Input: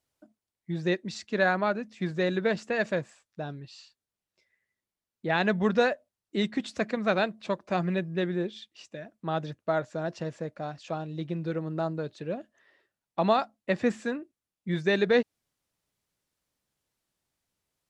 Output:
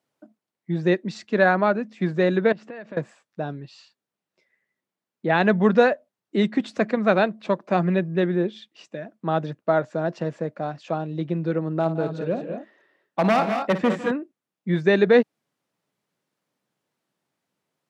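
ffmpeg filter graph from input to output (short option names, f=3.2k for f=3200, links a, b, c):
-filter_complex "[0:a]asettb=1/sr,asplit=3[a][b][c];[a]atrim=end=2.524[d];[b]atrim=start=2.52:end=2.97,asetpts=PTS-STARTPTS,afade=t=in:d=0.004:c=qsin,afade=t=out:st=0.446:d=0.004:c=qsin,lowpass=4.2k,acompressor=threshold=-42dB:ratio=6:attack=3.2:release=140:knee=1:detection=peak[e];[c]atrim=start=2.966[f];[d][e]acrossfade=d=0.004:c1=hsin:c2=qsin[g];[g][f]acrossfade=d=0.004:c1=qsin:c2=hsin,asettb=1/sr,asplit=3[h][i][j];[h]atrim=end=11.804[k];[i]atrim=start=11.8:end=14.11,asetpts=PTS-STARTPTS,afade=t=in:d=0.004:c=qsin,afade=t=out:st=2.306:d=0.004:c=qsin,aeval=exprs='0.106*(abs(mod(val(0)/0.106+3,4)-2)-1)':c=same,aecho=1:1:55|150|168|202|226:0.251|0.126|0.133|0.376|0.335,atrim=end_sample=101871[l];[j]atrim=start=14.106[m];[k][l]acrossfade=d=0.004:c1=hsin:c2=qsin[n];[n][m]acrossfade=d=0.004:c1=qsin:c2=hsin,highpass=f=140:w=0.5412,highpass=f=140:w=1.3066,highshelf=f=3.1k:g=-11.5,volume=7.5dB"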